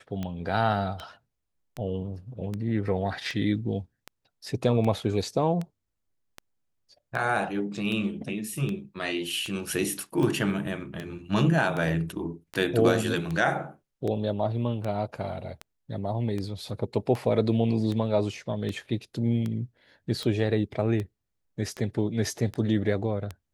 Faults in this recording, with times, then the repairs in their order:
tick 78 rpm -20 dBFS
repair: de-click

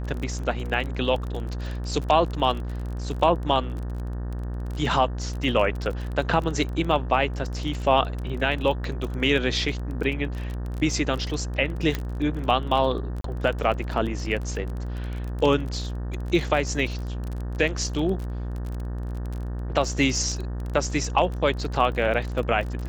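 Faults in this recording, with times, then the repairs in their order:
buzz 60 Hz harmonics 31 -30 dBFS
crackle 28/s -30 dBFS
11.95 pop -12 dBFS
13.21–13.24 gap 33 ms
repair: de-click; de-hum 60 Hz, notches 31; interpolate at 13.21, 33 ms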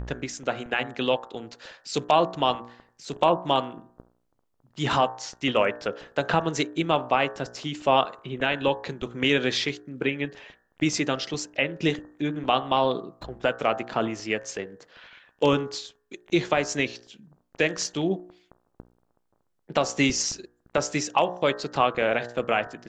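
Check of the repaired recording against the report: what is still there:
none

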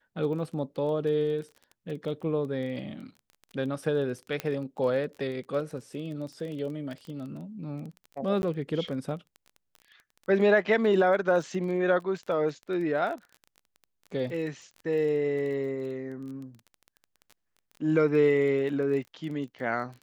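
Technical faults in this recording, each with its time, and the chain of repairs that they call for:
crackle 21/s -37 dBFS
4.4 pop -16 dBFS
8.42–8.43 gap 11 ms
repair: de-click; interpolate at 8.42, 11 ms

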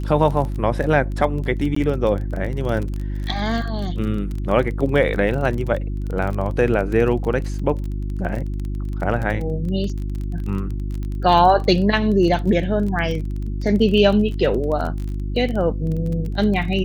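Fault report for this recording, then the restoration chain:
crackle 25/s -26 dBFS
hum 50 Hz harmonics 7 -25 dBFS
1.75–1.76 gap 14 ms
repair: de-click; de-hum 50 Hz, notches 7; interpolate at 1.75, 14 ms

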